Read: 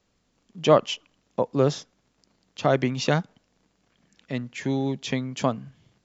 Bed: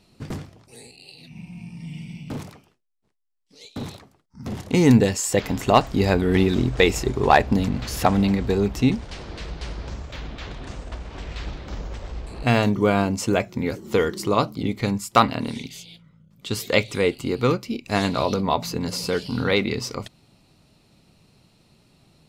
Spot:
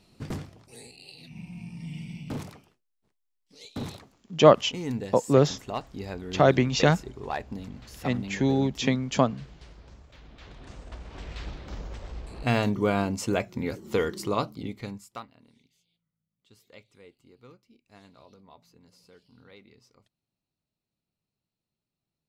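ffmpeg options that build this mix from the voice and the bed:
ffmpeg -i stem1.wav -i stem2.wav -filter_complex "[0:a]adelay=3750,volume=2dB[link_01];[1:a]volume=9dB,afade=type=out:start_time=4:duration=0.31:silence=0.188365,afade=type=in:start_time=10.22:duration=1.03:silence=0.266073,afade=type=out:start_time=14.19:duration=1.07:silence=0.0501187[link_02];[link_01][link_02]amix=inputs=2:normalize=0" out.wav

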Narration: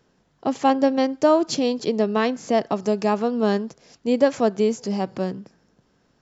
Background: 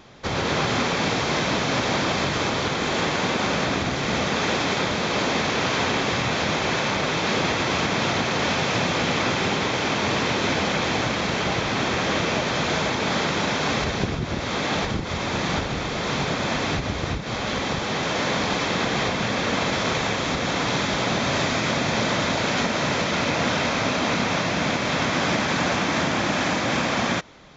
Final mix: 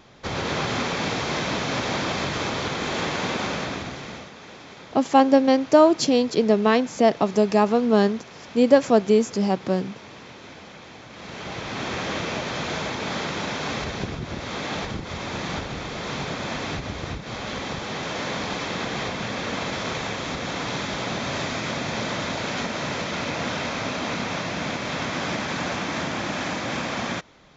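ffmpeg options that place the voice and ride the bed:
ffmpeg -i stem1.wav -i stem2.wav -filter_complex "[0:a]adelay=4500,volume=2.5dB[link_01];[1:a]volume=12dB,afade=type=out:start_time=3.36:duration=0.96:silence=0.141254,afade=type=in:start_time=11.08:duration=0.86:silence=0.177828[link_02];[link_01][link_02]amix=inputs=2:normalize=0" out.wav

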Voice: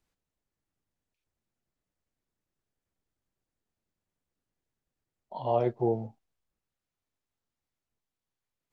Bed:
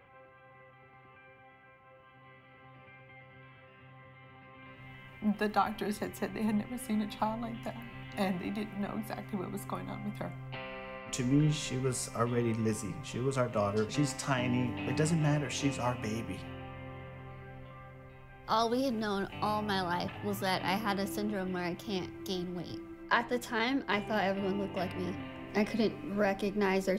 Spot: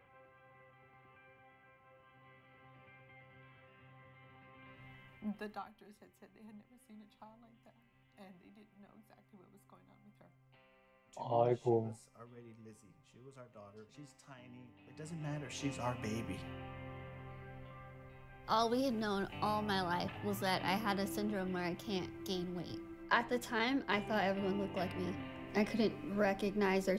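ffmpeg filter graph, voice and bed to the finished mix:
ffmpeg -i stem1.wav -i stem2.wav -filter_complex "[0:a]adelay=5850,volume=-5dB[link_01];[1:a]volume=15dB,afade=type=out:start_time=4.85:duration=0.89:silence=0.11885,afade=type=in:start_time=14.92:duration=1.34:silence=0.0891251[link_02];[link_01][link_02]amix=inputs=2:normalize=0" out.wav

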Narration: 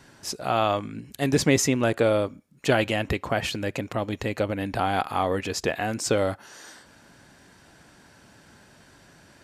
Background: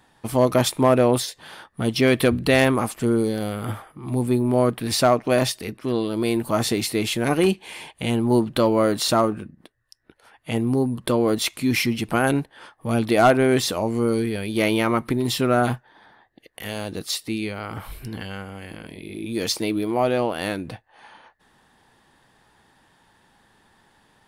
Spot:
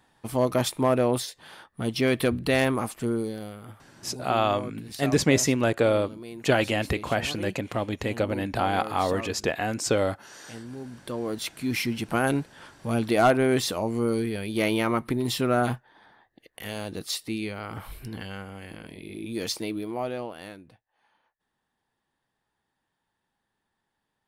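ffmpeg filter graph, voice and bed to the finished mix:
ffmpeg -i stem1.wav -i stem2.wav -filter_complex "[0:a]adelay=3800,volume=-0.5dB[link_01];[1:a]volume=8.5dB,afade=type=out:start_time=2.98:duration=0.77:silence=0.237137,afade=type=in:start_time=10.8:duration=1.36:silence=0.199526,afade=type=out:start_time=19.1:duration=1.64:silence=0.133352[link_02];[link_01][link_02]amix=inputs=2:normalize=0" out.wav

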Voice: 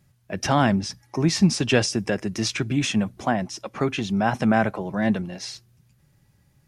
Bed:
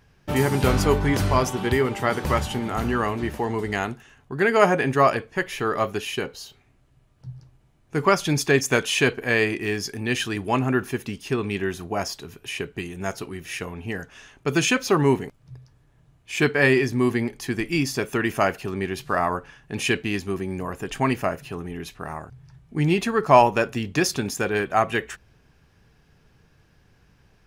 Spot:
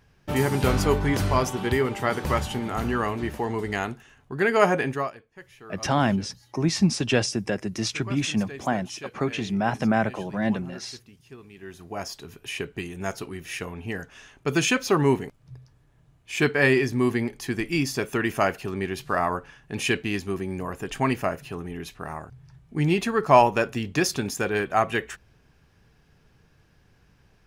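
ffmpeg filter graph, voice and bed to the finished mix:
ffmpeg -i stem1.wav -i stem2.wav -filter_complex "[0:a]adelay=5400,volume=-2.5dB[link_01];[1:a]volume=17dB,afade=type=out:start_time=4.79:duration=0.33:silence=0.11885,afade=type=in:start_time=11.56:duration=0.84:silence=0.112202[link_02];[link_01][link_02]amix=inputs=2:normalize=0" out.wav

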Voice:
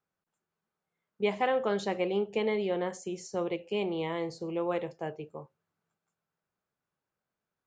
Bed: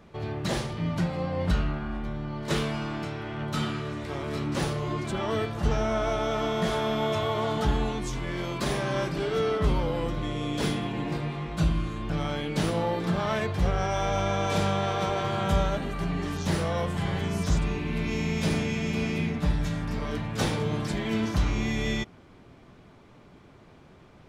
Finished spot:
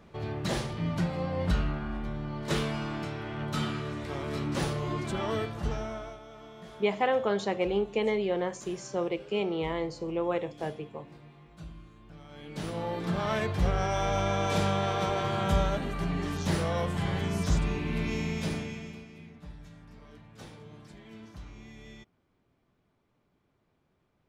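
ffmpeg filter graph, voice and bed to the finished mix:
ffmpeg -i stem1.wav -i stem2.wav -filter_complex "[0:a]adelay=5600,volume=1.5dB[link_01];[1:a]volume=17dB,afade=type=out:start_time=5.25:duration=0.95:silence=0.11885,afade=type=in:start_time=12.28:duration=1.09:silence=0.112202,afade=type=out:start_time=18.01:duration=1.04:silence=0.112202[link_02];[link_01][link_02]amix=inputs=2:normalize=0" out.wav

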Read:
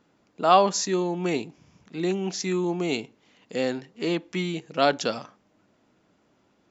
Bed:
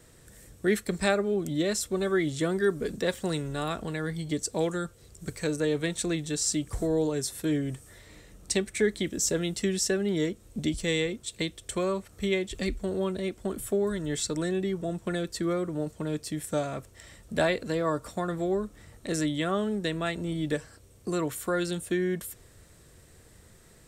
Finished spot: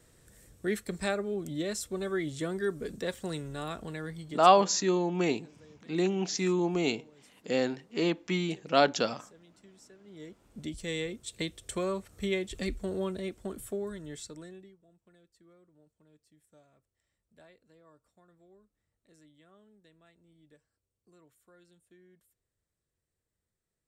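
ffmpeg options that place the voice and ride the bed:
ffmpeg -i stem1.wav -i stem2.wav -filter_complex "[0:a]adelay=3950,volume=-2dB[link_01];[1:a]volume=20dB,afade=type=out:start_time=3.98:duration=0.77:silence=0.0668344,afade=type=in:start_time=10.03:duration=1.42:silence=0.0501187,afade=type=out:start_time=12.98:duration=1.79:silence=0.0354813[link_02];[link_01][link_02]amix=inputs=2:normalize=0" out.wav

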